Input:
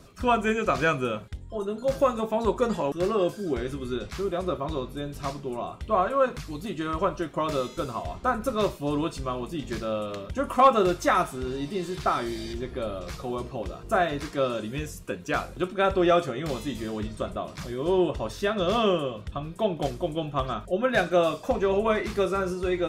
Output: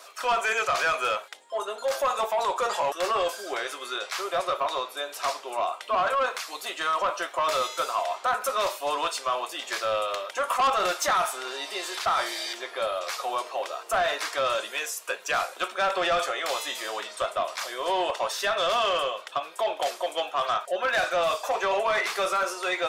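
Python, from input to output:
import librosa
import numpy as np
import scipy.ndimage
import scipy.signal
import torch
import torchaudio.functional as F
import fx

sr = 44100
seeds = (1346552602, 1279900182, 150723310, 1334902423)

p1 = scipy.signal.sosfilt(scipy.signal.butter(4, 640.0, 'highpass', fs=sr, output='sos'), x)
p2 = fx.over_compress(p1, sr, threshold_db=-32.0, ratio=-1.0)
p3 = p1 + (p2 * 10.0 ** (0.5 / 20.0))
p4 = 10.0 ** (-20.5 / 20.0) * np.tanh(p3 / 10.0 ** (-20.5 / 20.0))
y = p4 * 10.0 ** (2.0 / 20.0)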